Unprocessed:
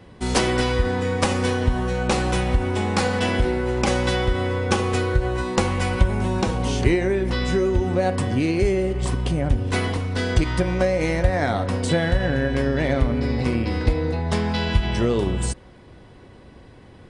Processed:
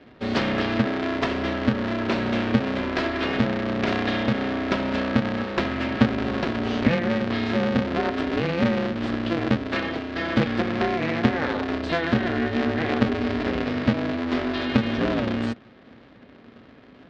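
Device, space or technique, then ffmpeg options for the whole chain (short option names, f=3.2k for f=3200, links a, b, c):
ring modulator pedal into a guitar cabinet: -filter_complex "[0:a]asettb=1/sr,asplit=3[a][b][c];[a]atrim=end=8.774[d];[b]atrim=start=8.77:end=10.47,asetpts=PTS-STARTPTS,afade=t=in:d=0.004:c=qsin,afade=t=out:st=1.696:d=0.004:c=qsin,aecho=1:1:6.1:0.5,atrim=end_sample=74970[e];[c]atrim=start=10.466[f];[d][e]acrossfade=d=0.004:c1=hsin:c2=qsin[g];[g][f]acrossfade=d=0.004:c1=qsin:c2=hsin,aeval=exprs='val(0)*sgn(sin(2*PI*170*n/s))':c=same,highpass=75,equalizer=f=85:t=q:w=4:g=-7,equalizer=f=240:t=q:w=4:g=6,equalizer=f=890:t=q:w=4:g=-5,equalizer=f=1.7k:t=q:w=4:g=3,lowpass=f=4.2k:w=0.5412,lowpass=f=4.2k:w=1.3066,volume=-3.5dB"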